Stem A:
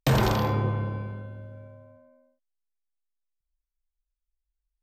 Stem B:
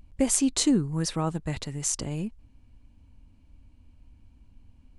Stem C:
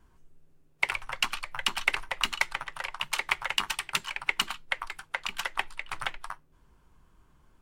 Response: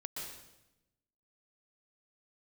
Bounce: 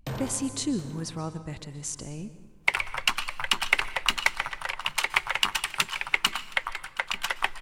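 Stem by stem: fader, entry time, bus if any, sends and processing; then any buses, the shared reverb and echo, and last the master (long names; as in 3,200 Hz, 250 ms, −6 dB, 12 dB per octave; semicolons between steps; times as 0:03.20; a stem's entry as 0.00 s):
−10.5 dB, 0.00 s, no send, echo send −16.5 dB, automatic ducking −10 dB, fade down 0.65 s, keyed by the second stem
−8.0 dB, 0.00 s, send −8.5 dB, no echo send, no processing
+2.5 dB, 1.85 s, send −14 dB, echo send −22 dB, no processing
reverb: on, RT60 0.95 s, pre-delay 114 ms
echo: repeating echo 720 ms, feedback 28%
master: no processing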